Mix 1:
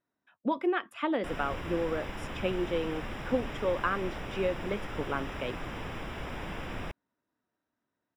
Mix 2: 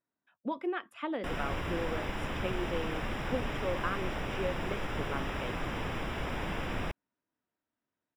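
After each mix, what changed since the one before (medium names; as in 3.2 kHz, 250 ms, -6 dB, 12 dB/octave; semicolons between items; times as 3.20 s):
speech -5.5 dB; background +3.0 dB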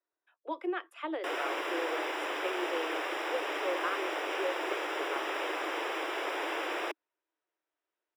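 background +4.0 dB; master: add steep high-pass 310 Hz 96 dB/octave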